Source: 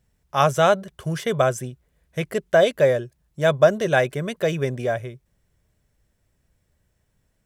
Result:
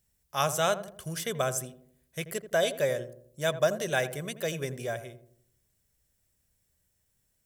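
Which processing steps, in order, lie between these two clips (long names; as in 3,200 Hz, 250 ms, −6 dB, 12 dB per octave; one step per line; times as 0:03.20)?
first-order pre-emphasis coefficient 0.8
feedback echo with a low-pass in the loop 84 ms, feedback 51%, low-pass 810 Hz, level −10 dB
level +3 dB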